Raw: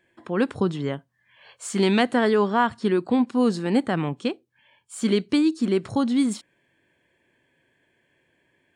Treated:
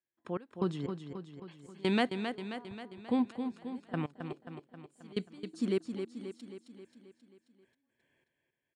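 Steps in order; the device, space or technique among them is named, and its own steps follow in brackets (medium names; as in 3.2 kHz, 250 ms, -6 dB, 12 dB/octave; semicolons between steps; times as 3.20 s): 2.35–3.04 s: Chebyshev low-pass 770 Hz, order 2; trance gate with a delay (trance gate "..x..xx..." 122 bpm -24 dB; feedback delay 267 ms, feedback 58%, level -7.5 dB); trim -8.5 dB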